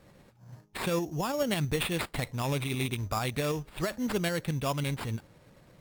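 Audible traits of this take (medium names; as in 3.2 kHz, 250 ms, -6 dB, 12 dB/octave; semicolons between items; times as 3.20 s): tremolo saw up 9.1 Hz, depth 35%; aliases and images of a low sample rate 6.1 kHz, jitter 0%; Vorbis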